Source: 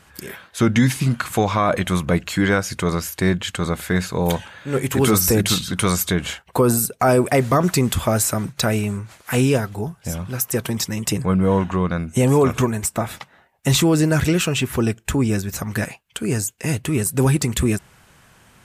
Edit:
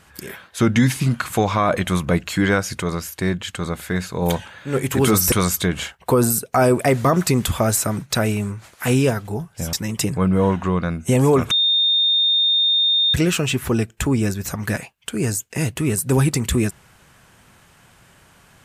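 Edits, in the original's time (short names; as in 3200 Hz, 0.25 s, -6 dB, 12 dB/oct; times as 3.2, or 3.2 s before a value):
2.82–4.22 gain -3 dB
5.32–5.79 cut
10.2–10.81 cut
12.59–14.22 bleep 3650 Hz -14 dBFS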